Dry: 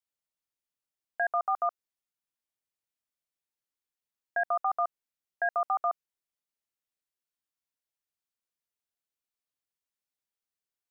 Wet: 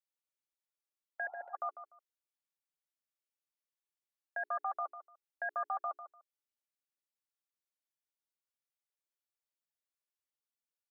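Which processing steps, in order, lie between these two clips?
Butterworth high-pass 300 Hz
mains-hum notches 60/120/180/240/300/360/420 Hz
comb filter 3.5 ms, depth 48%
repeating echo 148 ms, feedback 18%, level −12 dB
healed spectral selection 0:01.23–0:01.51, 690–1,400 Hz before
level −7.5 dB

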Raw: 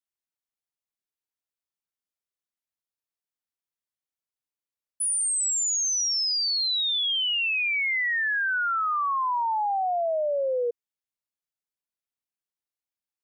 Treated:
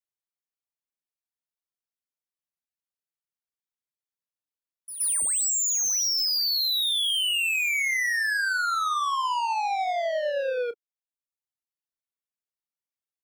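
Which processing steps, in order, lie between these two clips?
leveller curve on the samples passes 2
reverb reduction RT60 0.92 s
in parallel at −10 dB: gain into a clipping stage and back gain 29 dB
on the sum: double-tracking delay 30 ms −14 dB
echo ahead of the sound 121 ms −12 dB
level −2.5 dB

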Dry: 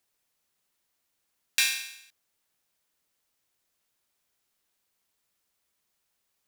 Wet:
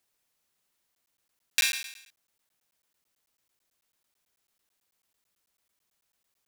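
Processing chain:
regular buffer underruns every 0.11 s, samples 512, zero, from 0:00.95

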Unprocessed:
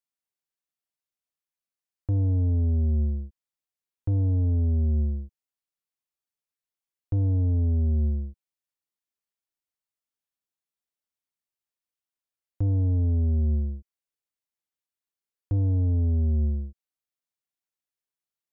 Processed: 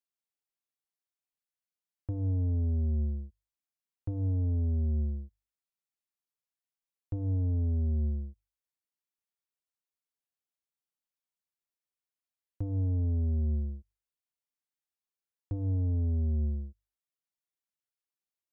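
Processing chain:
mains-hum notches 50/100 Hz
level −5.5 dB

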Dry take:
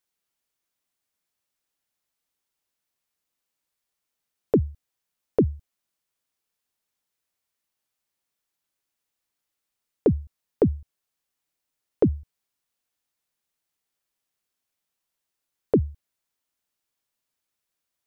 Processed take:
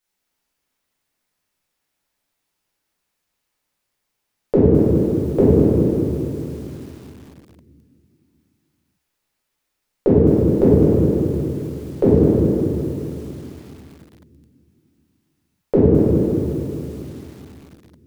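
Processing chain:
convolution reverb RT60 2.5 s, pre-delay 6 ms, DRR −9 dB
feedback echo at a low word length 210 ms, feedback 55%, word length 7 bits, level −7 dB

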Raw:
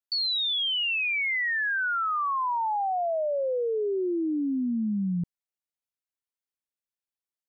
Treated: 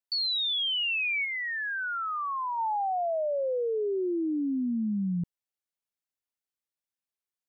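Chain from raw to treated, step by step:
0:01.24–0:02.57: low-pass filter 1,700 Hz → 1,000 Hz 6 dB per octave
level −1.5 dB

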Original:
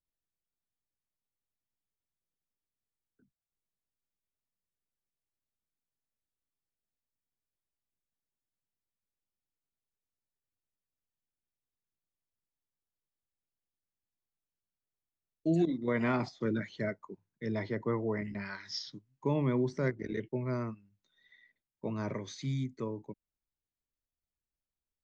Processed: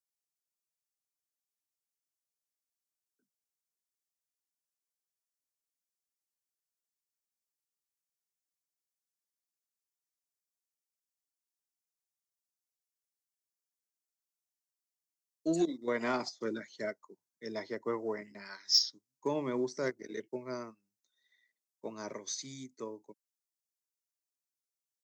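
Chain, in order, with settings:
high-pass filter 330 Hz 12 dB per octave
high shelf with overshoot 4,100 Hz +10.5 dB, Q 1.5
in parallel at −3.5 dB: soft clipping −24.5 dBFS, distortion −17 dB
on the sum: expander for the loud parts 1.5 to 1, over −48 dBFS

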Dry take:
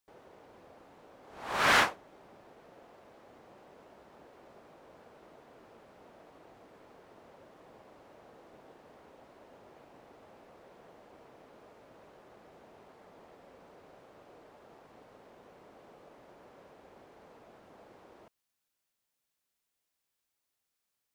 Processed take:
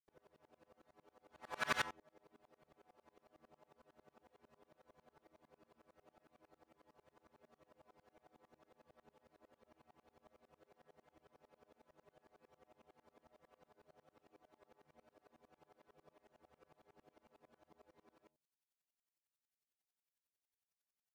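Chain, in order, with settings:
stiff-string resonator 75 Hz, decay 0.33 s, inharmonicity 0.008
tremolo with a ramp in dB swelling 11 Hz, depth 28 dB
level +3 dB

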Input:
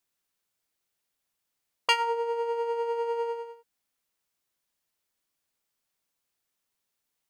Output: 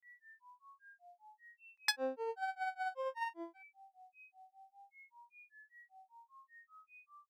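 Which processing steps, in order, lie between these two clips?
steady tone 1,400 Hz −47 dBFS
granular cloud 210 ms, grains 5.1 per second, spray 23 ms, pitch spread up and down by 12 semitones
level −7 dB

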